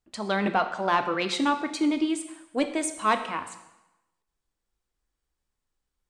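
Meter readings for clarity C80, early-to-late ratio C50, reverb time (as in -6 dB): 12.5 dB, 10.5 dB, 0.95 s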